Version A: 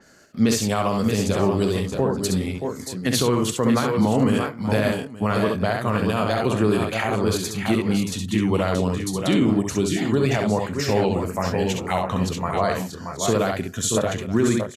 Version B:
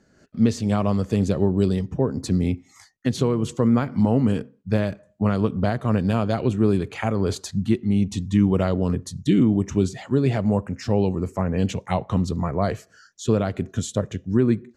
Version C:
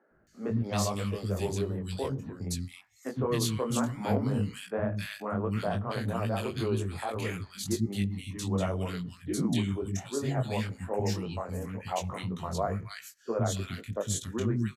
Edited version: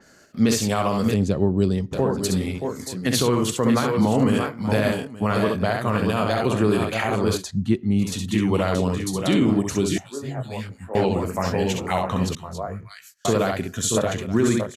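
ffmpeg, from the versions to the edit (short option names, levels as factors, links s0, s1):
-filter_complex "[1:a]asplit=2[s0][s1];[2:a]asplit=2[s2][s3];[0:a]asplit=5[s4][s5][s6][s7][s8];[s4]atrim=end=1.142[s9];[s0]atrim=start=1.138:end=1.932[s10];[s5]atrim=start=1.928:end=7.44[s11];[s1]atrim=start=7.34:end=8.08[s12];[s6]atrim=start=7.98:end=9.982[s13];[s2]atrim=start=9.978:end=10.952[s14];[s7]atrim=start=10.948:end=12.352[s15];[s3]atrim=start=12.348:end=13.252[s16];[s8]atrim=start=13.248[s17];[s9][s10]acrossfade=d=0.004:c1=hsin:c2=hsin[s18];[s18][s11]acrossfade=d=0.004:c1=hsin:c2=hsin[s19];[s19][s12]acrossfade=d=0.1:c1=tri:c2=tri[s20];[s20][s13]acrossfade=d=0.1:c1=tri:c2=tri[s21];[s21][s14]acrossfade=d=0.004:c1=hsin:c2=hsin[s22];[s22][s15]acrossfade=d=0.004:c1=hsin:c2=hsin[s23];[s23][s16]acrossfade=d=0.004:c1=hsin:c2=hsin[s24];[s24][s17]acrossfade=d=0.004:c1=hsin:c2=hsin"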